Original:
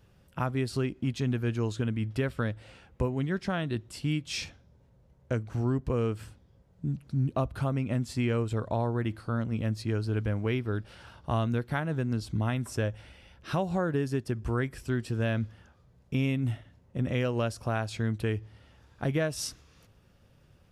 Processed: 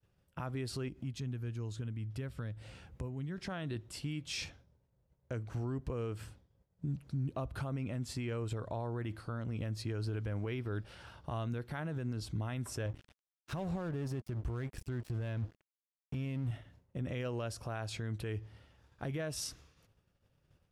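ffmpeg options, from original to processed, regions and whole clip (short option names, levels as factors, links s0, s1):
-filter_complex "[0:a]asettb=1/sr,asplit=3[s0][s1][s2];[s0]atrim=end=0.884[s3];[s1]atrim=start=0.88:end=3.38,asetpts=PTS-STARTPTS,afade=t=in:d=0.004:c=qsin,afade=t=out:st=2.496:d=0.004:c=qsin,highpass=46,bass=f=250:g=8,treble=f=4000:g=4,acompressor=threshold=0.00631:ratio=2:attack=3.2:release=140:knee=1:detection=peak[s4];[s2]atrim=start=3.376[s5];[s3][s4]acrossfade=d=0.004:c1=hsin:c2=qsin[s6];[s6][s5]acrossfade=d=0.004:c1=qsin:c2=hsin,asettb=1/sr,asplit=3[s7][s8][s9];[s7]atrim=end=12.864[s10];[s8]atrim=start=12.86:end=16.51,asetpts=PTS-STARTPTS,afade=t=in:d=0.004:c=qsin,afade=t=out:st=3.646:d=0.004:c=qsin,lowshelf=f=200:g=10,aeval=exprs='sgn(val(0))*max(abs(val(0))-0.0106,0)':c=same[s11];[s9]atrim=start=16.506[s12];[s10][s11]acrossfade=d=0.004:c1=hsin:c2=qsin[s13];[s13][s12]acrossfade=d=0.004:c1=qsin:c2=hsin,agate=range=0.0224:threshold=0.00251:ratio=3:detection=peak,equalizer=f=220:t=o:w=0.27:g=-4.5,alimiter=level_in=1.41:limit=0.0631:level=0:latency=1:release=58,volume=0.708,volume=0.75"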